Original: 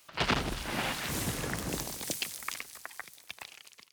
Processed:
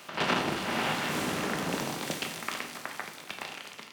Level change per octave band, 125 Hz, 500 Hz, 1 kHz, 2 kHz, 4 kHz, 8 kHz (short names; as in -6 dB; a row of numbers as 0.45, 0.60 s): -1.0, +5.0, +5.5, +4.0, +2.0, -2.0 dB